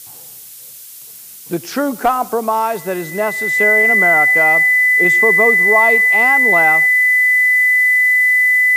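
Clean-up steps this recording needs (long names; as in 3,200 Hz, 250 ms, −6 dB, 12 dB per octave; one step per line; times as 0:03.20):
notch filter 2,000 Hz, Q 30
noise reduction from a noise print 25 dB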